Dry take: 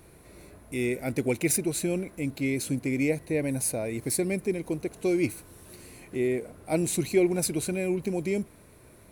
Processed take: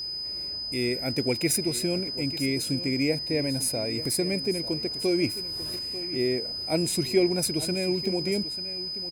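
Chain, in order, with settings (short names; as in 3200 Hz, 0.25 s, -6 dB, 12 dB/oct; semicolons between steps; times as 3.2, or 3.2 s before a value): 4.05–5.79 upward compressor, threshold -32 dBFS; echo 0.893 s -14.5 dB; whine 5000 Hz -31 dBFS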